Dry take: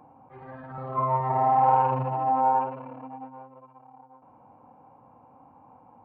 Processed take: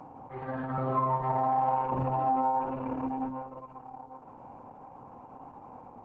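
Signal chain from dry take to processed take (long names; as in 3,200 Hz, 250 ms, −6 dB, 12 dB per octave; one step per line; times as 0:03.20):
dynamic equaliser 260 Hz, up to +5 dB, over −51 dBFS, Q 5.7
downward compressor 4 to 1, threshold −33 dBFS, peak gain reduction 14 dB
level +7 dB
Opus 10 kbit/s 48,000 Hz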